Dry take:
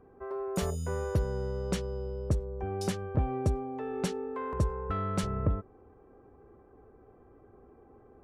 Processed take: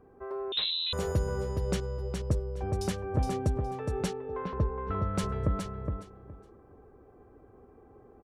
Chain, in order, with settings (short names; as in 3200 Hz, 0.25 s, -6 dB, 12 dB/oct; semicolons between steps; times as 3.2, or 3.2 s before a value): 1.8–2.2 expander -31 dBFS; feedback echo 0.416 s, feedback 19%, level -5.5 dB; 0.52–0.93 inverted band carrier 4000 Hz; 4.13–5.15 air absorption 290 m